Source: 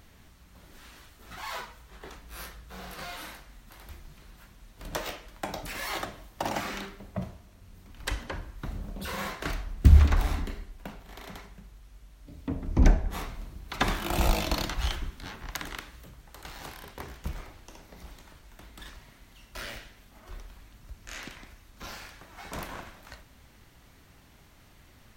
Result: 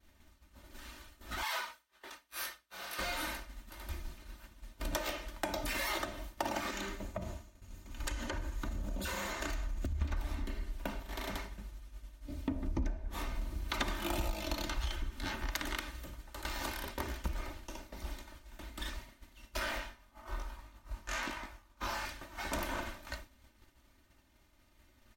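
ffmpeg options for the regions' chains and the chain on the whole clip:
-filter_complex "[0:a]asettb=1/sr,asplit=3[a][b][c];[a]atrim=end=1.434[d];[b]atrim=start=1.43:end=2.99,asetpts=PTS-STARTPTS,afade=t=in:d=0.004:c=qsin,afade=t=out:st=1.556:d=0.004:c=qsin,highpass=f=1.1k:p=1,bandreject=f=7k:w=16[e];[c]atrim=start=2.986[f];[d][e]acrossfade=d=0.004:c1=hsin:c2=qsin[g];[g][f]acrossfade=d=0.004:c1=qsin:c2=hsin,asettb=1/sr,asplit=3[h][i][j];[h]atrim=end=6.704[k];[i]atrim=start=6.7:end=10.02,asetpts=PTS-STARTPTS,afade=t=in:d=0.004:c=qsin,afade=t=out:st=3.316:d=0.004:c=qsin,acompressor=threshold=-38dB:ratio=5:attack=3.2:release=140:knee=1:detection=peak,equalizer=f=6.8k:w=7.6:g=10.5[l];[j]atrim=start=10.016[m];[k][l]acrossfade=d=0.004:c1=hsin:c2=qsin[n];[n][m]acrossfade=d=0.004:c1=qsin:c2=hsin,asettb=1/sr,asplit=3[o][p][q];[o]atrim=end=19.594[r];[p]atrim=start=19.59:end=22.05,asetpts=PTS-STARTPTS,afade=t=in:d=0.004:c=qsin,afade=t=out:st=2.456:d=0.004:c=qsin,equalizer=f=1k:t=o:w=1.2:g=10,flanger=delay=19.5:depth=3.2:speed=1.1[s];[q]atrim=start=22.046[t];[r][s]acrossfade=d=0.004:c1=hsin:c2=qsin[u];[u][t]acrossfade=d=0.004:c1=qsin:c2=hsin,agate=range=-33dB:threshold=-45dB:ratio=3:detection=peak,aecho=1:1:3.3:0.63,acompressor=threshold=-35dB:ratio=10,volume=3dB"

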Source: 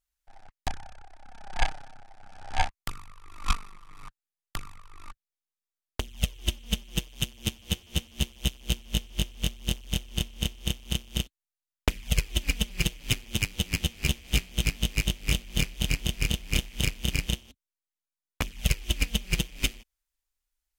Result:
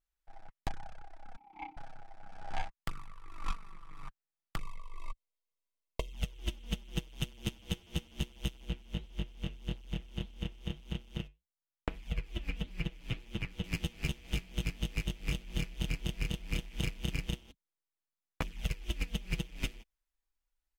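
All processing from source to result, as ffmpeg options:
-filter_complex "[0:a]asettb=1/sr,asplit=3[a][b][c];[a]atrim=end=1.364[d];[b]atrim=start=1.36:end=1.77,asetpts=PTS-STARTPTS,afade=t=in:d=0.004:c=qsin,afade=t=out:st=0.406:d=0.004:c=qsin,asplit=3[e][f][g];[e]bandpass=f=300:t=q:w=8,volume=0dB[h];[f]bandpass=f=870:t=q:w=8,volume=-6dB[i];[g]bandpass=f=2.24k:t=q:w=8,volume=-9dB[j];[h][i][j]amix=inputs=3:normalize=0,aecho=1:1:3.8:0.32,atrim=end_sample=18081[k];[c]atrim=start=1.766[l];[d][k]acrossfade=d=0.004:c1=hsin:c2=qsin[m];[m][l]acrossfade=d=0.004:c1=qsin:c2=hsin,asettb=1/sr,asplit=3[n][o][p];[n]atrim=end=4.604[q];[o]atrim=start=4.6:end=6.13,asetpts=PTS-STARTPTS,afade=t=in:d=0.004:c=qsin,afade=t=out:st=1.526:d=0.004:c=qsin,asuperstop=centerf=1500:order=8:qfactor=1.9,equalizer=f=92:t=o:w=0.86:g=-11,aecho=1:1:1.9:0.85,atrim=end_sample=67473[r];[p]atrim=start=6.126[s];[q][r]acrossfade=d=0.004:c1=hsin:c2=qsin[t];[t][s]acrossfade=d=0.004:c1=qsin:c2=hsin,asettb=1/sr,asplit=3[u][v][w];[u]atrim=end=8.654[x];[v]atrim=start=8.65:end=13.64,asetpts=PTS-STARTPTS,afade=t=in:d=0.004:c=qsin,afade=t=out:st=4.986:d=0.004:c=qsin,acrossover=split=3400[y][z];[z]acompressor=threshold=-44dB:ratio=4:attack=1:release=60[aa];[y][aa]amix=inputs=2:normalize=0,flanger=delay=3.6:depth=6.8:regen=-74:speed=1.7:shape=sinusoidal[ab];[w]atrim=start=13.636[ac];[x][ab]acrossfade=d=0.004:c1=hsin:c2=qsin[ad];[ad][ac]acrossfade=d=0.004:c1=qsin:c2=hsin,highshelf=f=3.2k:g=-10,aecho=1:1:6.1:0.37,acompressor=threshold=-28dB:ratio=6,volume=-1.5dB"

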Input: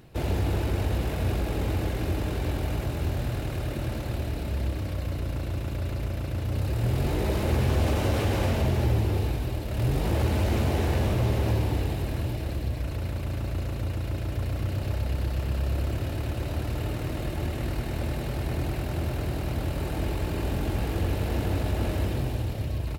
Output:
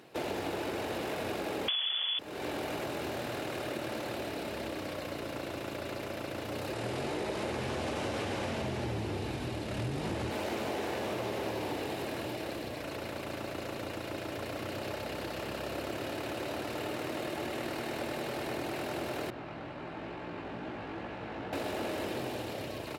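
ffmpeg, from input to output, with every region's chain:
-filter_complex "[0:a]asettb=1/sr,asplit=3[a][b][c];[a]atrim=end=1.684[d];[b]atrim=start=1.68:end=2.19,asetpts=PTS-STARTPTS,afade=t=in:d=0.004:c=qsin,afade=t=out:st=0.506:d=0.004:c=qsin,aeval=exprs='0.168*sin(PI/2*2.24*val(0)/0.168)':c=same,lowpass=f=3k:t=q:w=0.5098,lowpass=f=3k:t=q:w=0.6013,lowpass=f=3k:t=q:w=0.9,lowpass=f=3k:t=q:w=2.563,afreqshift=-3500[e];[c]atrim=start=2.186[f];[d][e]acrossfade=d=0.004:c1=hsin:c2=qsin[g];[g][f]acrossfade=d=0.004:c1=qsin:c2=hsin,asettb=1/sr,asplit=3[h][i][j];[h]atrim=end=6.734[k];[i]atrim=start=6.73:end=10.31,asetpts=PTS-STARTPTS,afade=t=in:d=0.004:c=qsin,afade=t=out:st=3.576:d=0.004:c=qsin,lowpass=f=11k:w=0.5412,lowpass=f=11k:w=1.3066,asubboost=boost=4.5:cutoff=230[l];[j]atrim=start=10.306[m];[k][l]acrossfade=d=0.004:c1=hsin:c2=qsin[n];[n][m]acrossfade=d=0.004:c1=qsin:c2=hsin,asettb=1/sr,asplit=3[o][p][q];[o]atrim=end=19.304[r];[p]atrim=start=19.3:end=21.53,asetpts=PTS-STARTPTS,afade=t=in:d=0.004:c=qsin,afade=t=out:st=2.226:d=0.004:c=qsin,equalizer=f=450:w=0.94:g=-7.5,adynamicsmooth=sensitivity=1.5:basefreq=2.1k,flanger=delay=16:depth=2.9:speed=2.2[s];[q]atrim=start=21.526[t];[r][s]acrossfade=d=0.004:c1=hsin:c2=qsin[u];[u][t]acrossfade=d=0.004:c1=qsin:c2=hsin,highpass=330,highshelf=f=10k:g=-7.5,acompressor=threshold=-34dB:ratio=6,volume=2.5dB"

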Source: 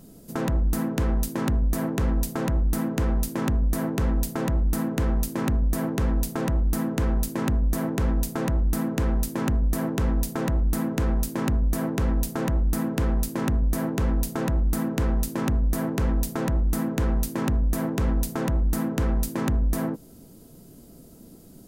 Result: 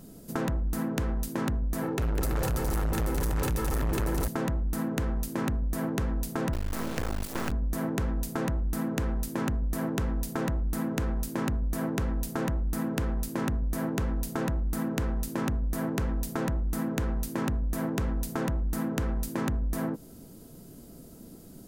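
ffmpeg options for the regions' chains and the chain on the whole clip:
-filter_complex "[0:a]asettb=1/sr,asplit=3[a][b][c];[a]atrim=end=1.824[d];[b]atrim=start=1.82:end=4.28,asetpts=PTS-STARTPTS,afade=t=in:d=0.004:c=qsin,afade=t=out:st=2.456:d=0.004:c=qsin,aecho=1:1:2.3:0.64,atrim=end_sample=108486,aecho=1:1:200|330|414.5|469.4|505.1|528.3:0.794|0.631|0.501|0.398|0.316|0.251,atrim=end_sample=108486,volume=22dB,asoftclip=hard,volume=-22dB[e];[c]atrim=start=4.276[f];[d][e]acrossfade=d=0.004:c1=hsin:c2=qsin[g];[g][f]acrossfade=d=0.004:c1=qsin:c2=hsin,asettb=1/sr,asplit=3[h][i][j];[h]atrim=end=6.534[k];[i]atrim=start=6.53:end=7.52,asetpts=PTS-STARTPTS,afade=t=in:d=0.004:c=qsin,afade=t=out:st=0.986:d=0.004:c=qsin,equalizer=f=1.5k:w=0.37:g=5.5,acrusher=bits=3:dc=4:mix=0:aa=0.000001[l];[j]atrim=start=7.516[m];[k][l]acrossfade=d=0.004:c1=hsin:c2=qsin[n];[n][m]acrossfade=d=0.004:c1=qsin:c2=hsin,equalizer=f=1.5k:t=o:w=0.77:g=2,acompressor=threshold=-26dB:ratio=6"

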